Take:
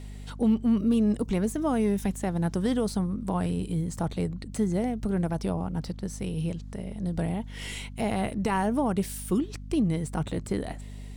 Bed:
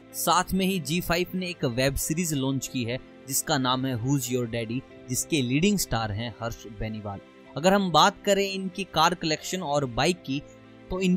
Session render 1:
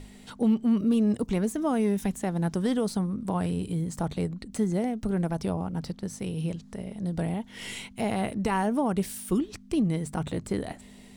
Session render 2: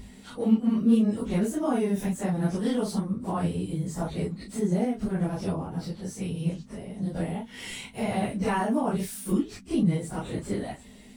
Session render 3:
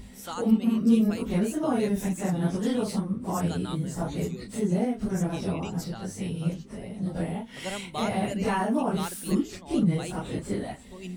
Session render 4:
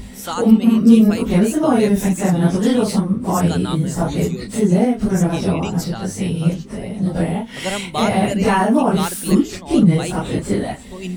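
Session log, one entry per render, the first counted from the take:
notches 50/100/150 Hz
phase scrambler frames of 0.1 s
add bed -15.5 dB
gain +11 dB; limiter -1 dBFS, peak gain reduction 1.5 dB

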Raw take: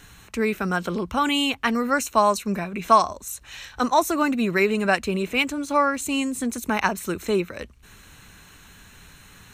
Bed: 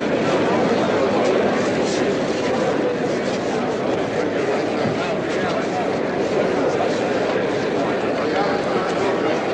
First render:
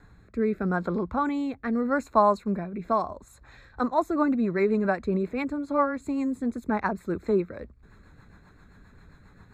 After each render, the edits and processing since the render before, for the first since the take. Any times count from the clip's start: running mean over 15 samples; rotary speaker horn 0.8 Hz, later 7.5 Hz, at 3.36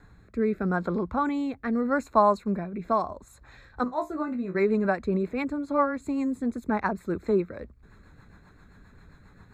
3.84–4.55 resonator 62 Hz, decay 0.18 s, mix 100%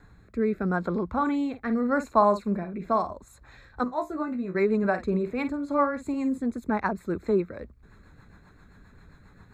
1.09–3.12 doubler 49 ms -11 dB; 4.78–6.38 doubler 49 ms -11 dB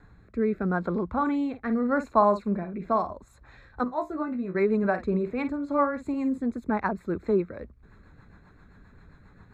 high shelf 5400 Hz -11.5 dB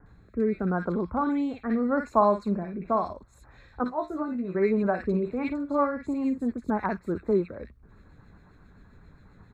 bands offset in time lows, highs 60 ms, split 1700 Hz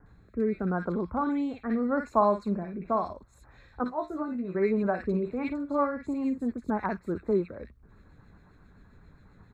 gain -2 dB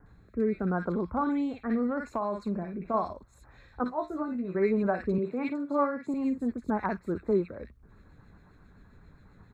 1.89–2.94 compressor, threshold -26 dBFS; 5.18–6.14 HPF 130 Hz 24 dB/oct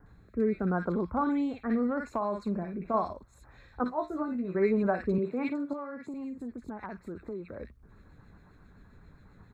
5.73–7.52 compressor 4:1, threshold -37 dBFS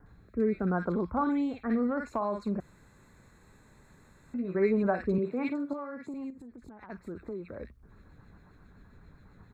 2.6–4.34 room tone; 6.3–6.9 compressor, threshold -45 dBFS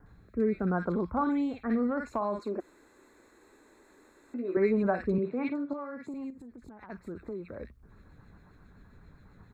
2.39–4.57 resonant low shelf 220 Hz -13 dB, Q 3; 5.1–5.8 air absorption 89 m

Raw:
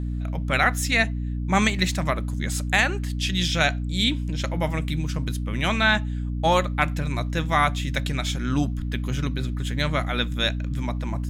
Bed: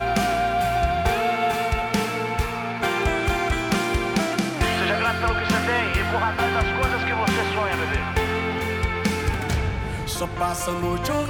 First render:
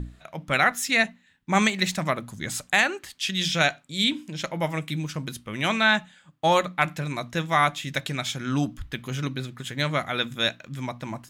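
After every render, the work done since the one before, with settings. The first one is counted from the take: notches 60/120/180/240/300 Hz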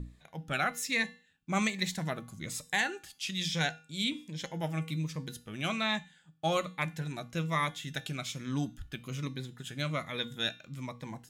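resonator 160 Hz, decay 0.43 s, harmonics odd, mix 60%; cascading phaser falling 1.2 Hz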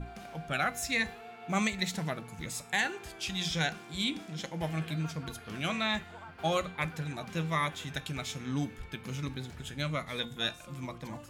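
add bed -25.5 dB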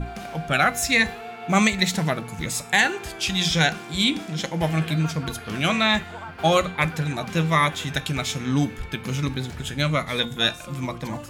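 gain +11 dB

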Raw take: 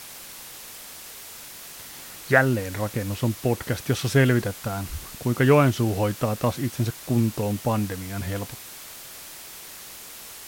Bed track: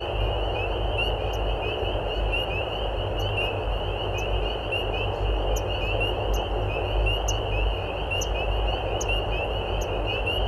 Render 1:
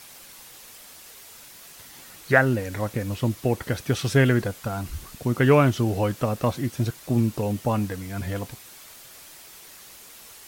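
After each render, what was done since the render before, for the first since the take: denoiser 6 dB, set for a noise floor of -42 dBFS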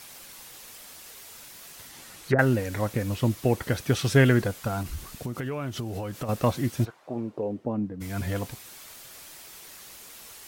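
1.87–2.39 treble ducked by the level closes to 380 Hz, closed at -16.5 dBFS; 4.82–6.29 compressor 12:1, threshold -28 dBFS; 6.84–8 band-pass 1000 Hz -> 200 Hz, Q 1.4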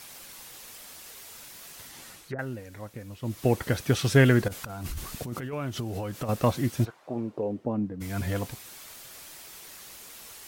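2.09–3.46 dip -13 dB, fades 0.24 s; 4.48–5.53 negative-ratio compressor -35 dBFS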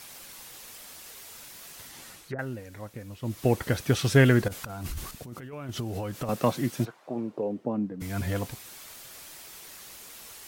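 5.11–5.69 gain -6.5 dB; 6.29–8.02 HPF 130 Hz 24 dB/oct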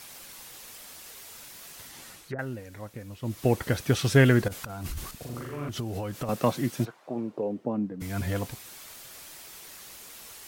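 5.17–5.69 flutter echo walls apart 7.1 m, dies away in 1.2 s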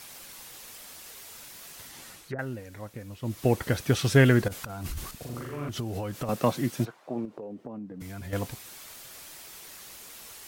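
7.25–8.33 compressor 4:1, threshold -37 dBFS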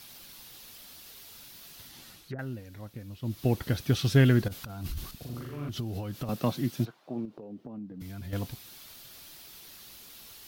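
graphic EQ 500/1000/2000/4000/8000 Hz -6/-5/-6/+3/-9 dB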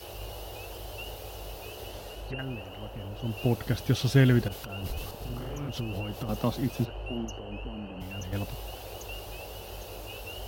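add bed track -15 dB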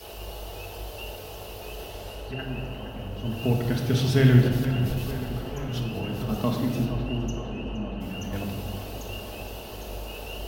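tape echo 0.466 s, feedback 83%, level -11 dB, low-pass 3400 Hz; shoebox room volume 1300 m³, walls mixed, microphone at 1.5 m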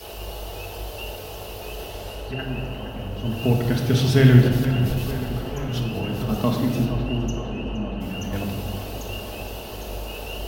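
gain +4 dB

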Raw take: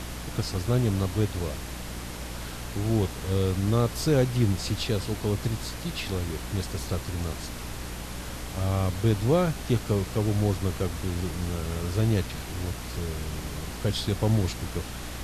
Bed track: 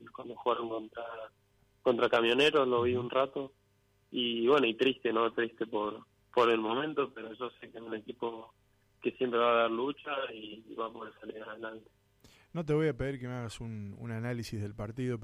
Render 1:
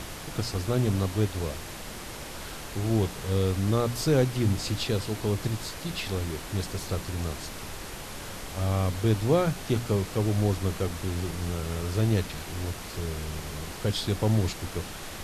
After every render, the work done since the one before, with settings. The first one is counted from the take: notches 60/120/180/240/300 Hz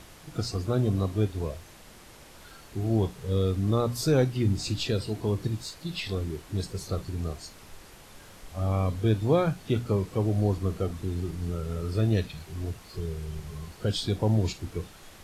noise print and reduce 11 dB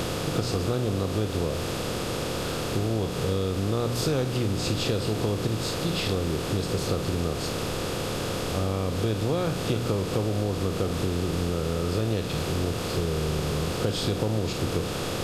per-bin compression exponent 0.4; compressor, threshold -22 dBFS, peak gain reduction 7.5 dB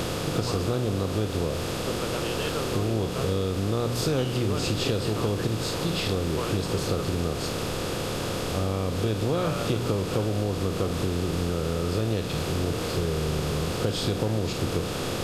add bed track -8 dB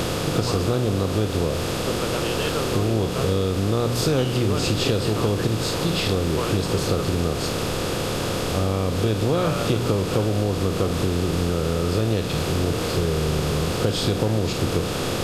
gain +4.5 dB

